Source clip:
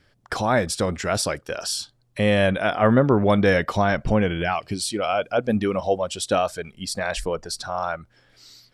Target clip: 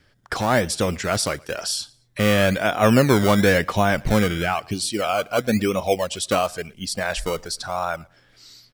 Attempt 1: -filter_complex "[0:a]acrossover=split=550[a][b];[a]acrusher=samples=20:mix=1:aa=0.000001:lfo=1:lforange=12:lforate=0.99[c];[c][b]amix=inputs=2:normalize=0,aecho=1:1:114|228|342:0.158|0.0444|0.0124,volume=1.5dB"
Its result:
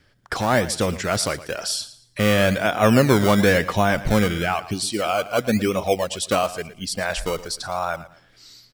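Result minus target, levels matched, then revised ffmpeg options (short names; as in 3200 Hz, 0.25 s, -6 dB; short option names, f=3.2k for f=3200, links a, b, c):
echo-to-direct +10 dB
-filter_complex "[0:a]acrossover=split=550[a][b];[a]acrusher=samples=20:mix=1:aa=0.000001:lfo=1:lforange=12:lforate=0.99[c];[c][b]amix=inputs=2:normalize=0,aecho=1:1:114|228:0.0501|0.014,volume=1.5dB"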